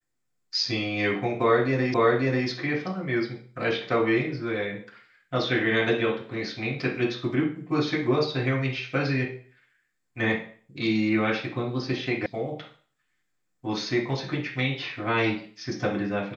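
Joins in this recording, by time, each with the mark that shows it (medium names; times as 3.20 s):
1.94 s: repeat of the last 0.54 s
12.26 s: sound stops dead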